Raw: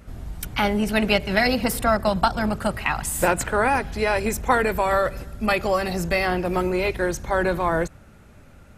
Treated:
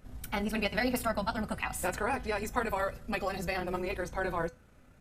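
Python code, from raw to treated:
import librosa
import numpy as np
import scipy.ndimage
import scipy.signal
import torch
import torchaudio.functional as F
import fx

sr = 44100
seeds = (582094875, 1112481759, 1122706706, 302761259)

y = fx.stretch_grains(x, sr, factor=0.57, grain_ms=63.0)
y = fx.comb_fb(y, sr, f0_hz=250.0, decay_s=0.21, harmonics='all', damping=0.0, mix_pct=60)
y = y * 10.0 ** (-3.0 / 20.0)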